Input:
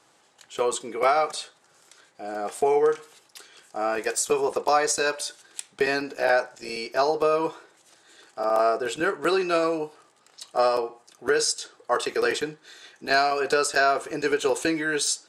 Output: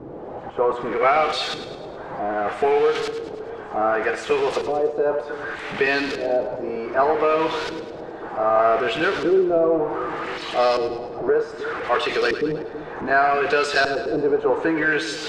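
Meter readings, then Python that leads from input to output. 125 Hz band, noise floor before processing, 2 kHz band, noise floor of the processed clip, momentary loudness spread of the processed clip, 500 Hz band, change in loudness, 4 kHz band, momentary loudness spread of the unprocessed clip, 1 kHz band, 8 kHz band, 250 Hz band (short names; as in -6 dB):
+7.5 dB, -61 dBFS, +4.0 dB, -35 dBFS, 12 LU, +4.0 dB, +3.0 dB, +1.5 dB, 12 LU, +3.5 dB, under -10 dB, +5.5 dB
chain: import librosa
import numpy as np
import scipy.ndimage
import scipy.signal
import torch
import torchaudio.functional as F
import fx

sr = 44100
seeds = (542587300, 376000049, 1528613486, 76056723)

y = x + 0.5 * 10.0 ** (-24.0 / 20.0) * np.sign(x)
y = fx.filter_lfo_lowpass(y, sr, shape='saw_up', hz=0.65, low_hz=340.0, high_hz=4600.0, q=1.5)
y = fx.echo_split(y, sr, split_hz=520.0, low_ms=319, high_ms=105, feedback_pct=52, wet_db=-11)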